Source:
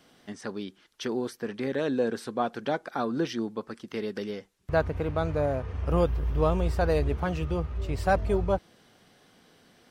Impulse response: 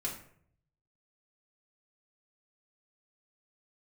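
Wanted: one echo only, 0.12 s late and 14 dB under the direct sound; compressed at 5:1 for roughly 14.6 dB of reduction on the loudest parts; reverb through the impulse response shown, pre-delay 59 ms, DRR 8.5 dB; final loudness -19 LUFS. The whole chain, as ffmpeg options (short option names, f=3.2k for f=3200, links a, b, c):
-filter_complex "[0:a]acompressor=threshold=-36dB:ratio=5,aecho=1:1:120:0.2,asplit=2[a][b];[1:a]atrim=start_sample=2205,adelay=59[c];[b][c]afir=irnorm=-1:irlink=0,volume=-10.5dB[d];[a][d]amix=inputs=2:normalize=0,volume=20.5dB"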